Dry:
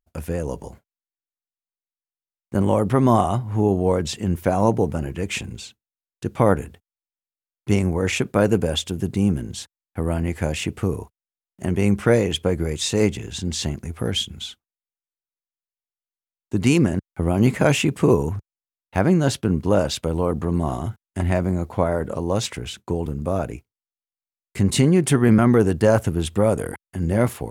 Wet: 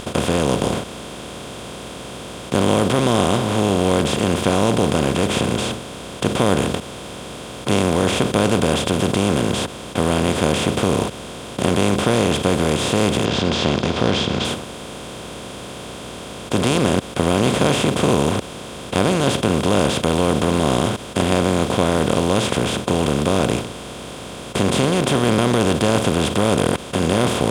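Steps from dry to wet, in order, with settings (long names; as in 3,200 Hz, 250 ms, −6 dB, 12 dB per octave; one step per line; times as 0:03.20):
compressor on every frequency bin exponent 0.2
0:13.25–0:14.45: high shelf with overshoot 7,300 Hz −13.5 dB, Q 1.5
mains hum 60 Hz, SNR 27 dB
level −8 dB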